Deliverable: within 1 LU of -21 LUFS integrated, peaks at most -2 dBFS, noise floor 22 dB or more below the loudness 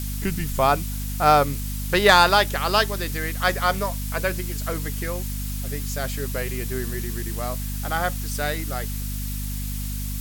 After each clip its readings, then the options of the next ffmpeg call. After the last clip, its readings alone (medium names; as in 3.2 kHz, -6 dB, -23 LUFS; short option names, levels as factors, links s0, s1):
hum 50 Hz; highest harmonic 250 Hz; hum level -27 dBFS; noise floor -29 dBFS; noise floor target -46 dBFS; loudness -23.5 LUFS; peak level -4.5 dBFS; loudness target -21.0 LUFS
-> -af "bandreject=f=50:t=h:w=6,bandreject=f=100:t=h:w=6,bandreject=f=150:t=h:w=6,bandreject=f=200:t=h:w=6,bandreject=f=250:t=h:w=6"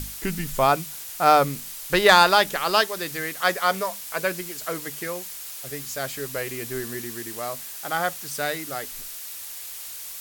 hum not found; noise floor -37 dBFS; noise floor target -46 dBFS
-> -af "afftdn=nr=9:nf=-37"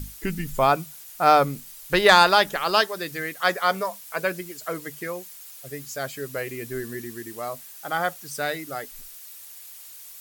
noise floor -44 dBFS; noise floor target -46 dBFS
-> -af "afftdn=nr=6:nf=-44"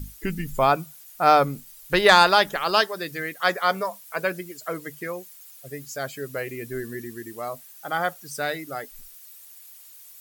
noise floor -47 dBFS; loudness -23.5 LUFS; peak level -3.5 dBFS; loudness target -21.0 LUFS
-> -af "volume=1.33,alimiter=limit=0.794:level=0:latency=1"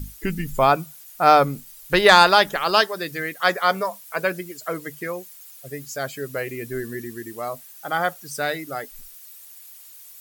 loudness -21.0 LUFS; peak level -2.0 dBFS; noise floor -45 dBFS